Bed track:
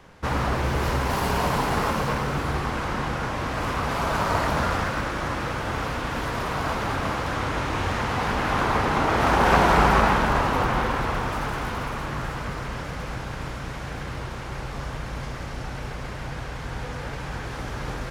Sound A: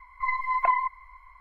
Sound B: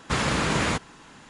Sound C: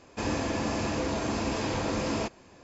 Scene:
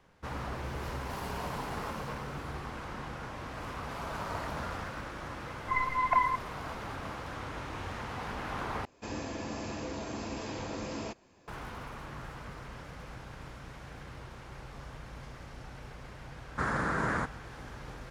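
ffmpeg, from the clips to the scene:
ffmpeg -i bed.wav -i cue0.wav -i cue1.wav -i cue2.wav -filter_complex "[0:a]volume=-13.5dB[link_01];[2:a]highshelf=frequency=2100:width_type=q:width=3:gain=-9.5[link_02];[link_01]asplit=2[link_03][link_04];[link_03]atrim=end=8.854[link_05];[3:a]atrim=end=2.63,asetpts=PTS-STARTPTS,volume=-8.5dB[link_06];[link_04]atrim=start=11.476[link_07];[1:a]atrim=end=1.4,asetpts=PTS-STARTPTS,volume=-3dB,afade=type=in:duration=0.004:curve=hsin,afade=type=out:start_time=1.396:duration=0.004:curve=hsin,adelay=5480[link_08];[link_02]atrim=end=1.29,asetpts=PTS-STARTPTS,volume=-8dB,afade=type=in:duration=0.004:curve=hsin,afade=type=out:start_time=1.286:duration=0.004:curve=hsin,adelay=16480[link_09];[link_05][link_06]acrossfade=duration=0.004:curve1=hsin:curve2=hsin[link_10];[link_10][link_07]acrossfade=duration=0.004:curve1=hsin:curve2=hsin[link_11];[link_11][link_08][link_09]amix=inputs=3:normalize=0" out.wav

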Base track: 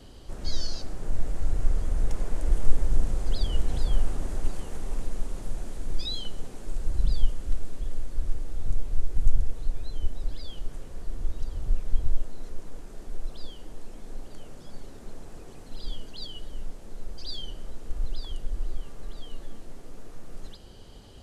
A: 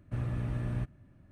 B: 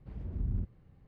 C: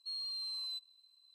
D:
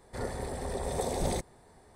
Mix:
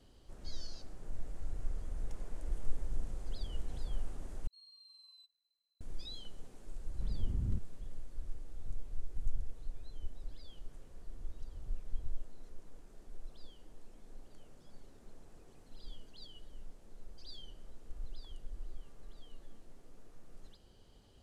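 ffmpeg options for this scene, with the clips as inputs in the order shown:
ffmpeg -i bed.wav -i cue0.wav -i cue1.wav -i cue2.wav -filter_complex "[0:a]volume=-14dB[link_01];[3:a]flanger=delay=3.7:depth=1.5:regen=-53:speed=1.6:shape=triangular[link_02];[link_01]asplit=2[link_03][link_04];[link_03]atrim=end=4.474[link_05];[link_02]atrim=end=1.34,asetpts=PTS-STARTPTS,volume=-14.5dB[link_06];[link_04]atrim=start=5.806[link_07];[2:a]atrim=end=1.07,asetpts=PTS-STARTPTS,volume=-2.5dB,afade=type=in:duration=0.004:curve=hsin,afade=type=out:start_time=1.066:duration=0.004:curve=hsin,adelay=6940[link_08];[link_05][link_06]acrossfade=duration=0.004:curve1=hsin:curve2=hsin[link_09];[link_09][link_07]acrossfade=duration=0.004:curve1=hsin:curve2=hsin[link_10];[link_10][link_08]amix=inputs=2:normalize=0" out.wav

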